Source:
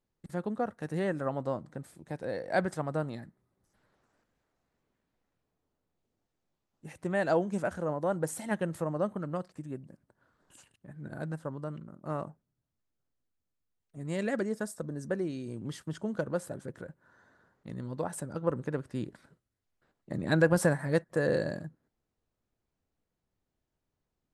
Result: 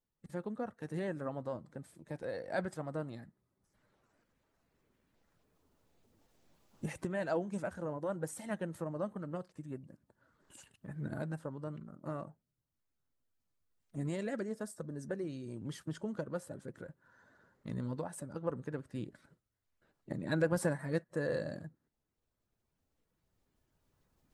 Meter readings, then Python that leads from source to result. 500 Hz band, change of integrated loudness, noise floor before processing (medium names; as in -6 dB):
-6.5 dB, -6.5 dB, -85 dBFS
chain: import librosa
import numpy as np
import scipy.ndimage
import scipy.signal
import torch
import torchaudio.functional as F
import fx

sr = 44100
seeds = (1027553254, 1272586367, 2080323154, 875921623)

y = fx.spec_quant(x, sr, step_db=15)
y = fx.recorder_agc(y, sr, target_db=-23.0, rise_db_per_s=5.9, max_gain_db=30)
y = fx.notch(y, sr, hz=740.0, q=21.0)
y = y * librosa.db_to_amplitude(-6.5)